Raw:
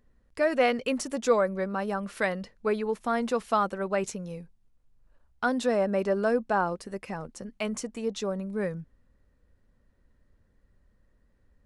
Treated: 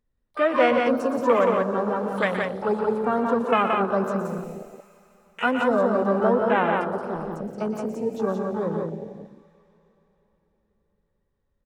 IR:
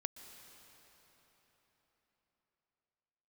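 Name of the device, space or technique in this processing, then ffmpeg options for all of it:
shimmer-style reverb: -filter_complex "[0:a]asplit=2[s0][s1];[s1]asetrate=88200,aresample=44100,atempo=0.5,volume=0.398[s2];[s0][s2]amix=inputs=2:normalize=0[s3];[1:a]atrim=start_sample=2205[s4];[s3][s4]afir=irnorm=-1:irlink=0,asettb=1/sr,asplit=3[s5][s6][s7];[s5]atrim=end=4.254[s8];[s6]atrim=start=4.25:end=5.51,asetpts=PTS-STARTPTS,afade=t=in:d=0.004:c=qsin,afade=t=out:st=1.256:d=0.004:c=qsin,aemphasis=mode=production:type=50kf[s9];[s7]atrim=start=5.506[s10];[s8][s9]acrossfade=d=0.004:c1=hsin:c2=qsin[s11];[s11][s10]acrossfade=d=0.004:c1=qsin:c2=hsin,afwtdn=0.0251,asettb=1/sr,asplit=3[s12][s13][s14];[s12]atrim=end=1.964[s15];[s13]atrim=start=1.96:end=3.03,asetpts=PTS-STARTPTS,afade=t=in:d=0.004:c=qsin,afade=t=out:st=1.066:d=0.004:c=qsin,highshelf=f=4800:g=7[s16];[s14]atrim=start=3.026[s17];[s15][s16]acrossfade=d=0.004:c1=hsin:c2=qsin[s18];[s18][s17]acrossfade=d=0.004:c1=qsin:c2=hsin,aecho=1:1:119.5|174.9:0.316|0.631,volume=1.88"

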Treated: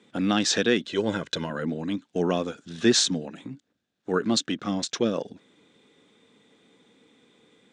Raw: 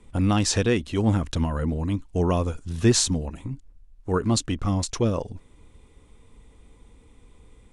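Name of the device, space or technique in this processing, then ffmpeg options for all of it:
television speaker: -filter_complex "[0:a]highpass=f=180:w=0.5412,highpass=f=180:w=1.3066,equalizer=f=990:t=q:w=4:g=-7,equalizer=f=1600:t=q:w=4:g=7,equalizer=f=3600:t=q:w=4:g=8,lowpass=f=7300:w=0.5412,lowpass=f=7300:w=1.3066,asettb=1/sr,asplit=3[s0][s1][s2];[s0]atrim=end=0.874[s3];[s1]atrim=start=0.87:end=1.5,asetpts=PTS-STARTPTS,afade=t=in:d=0.004:c=qsin,afade=t=out:st=0.626:d=0.004:c=qsin,aecho=1:1:2:0.61,atrim=end_sample=27783[s4];[s2]atrim=start=1.496[s5];[s3][s4]acrossfade=d=0.004:c1=hsin:c2=qsin[s6];[s6][s5]acrossfade=d=0.004:c1=qsin:c2=hsin"

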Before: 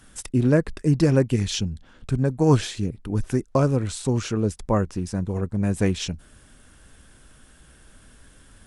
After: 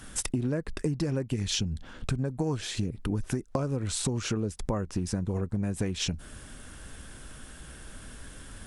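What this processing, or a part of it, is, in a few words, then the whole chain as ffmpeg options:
serial compression, peaks first: -af "acompressor=threshold=0.0398:ratio=6,acompressor=threshold=0.0224:ratio=2.5,volume=2"

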